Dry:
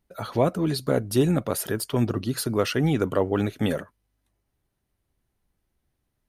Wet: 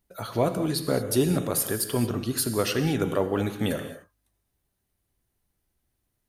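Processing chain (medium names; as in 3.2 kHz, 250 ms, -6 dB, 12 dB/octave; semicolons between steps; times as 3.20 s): treble shelf 5.6 kHz +8.5 dB; gated-style reverb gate 250 ms flat, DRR 7.5 dB; trim -2.5 dB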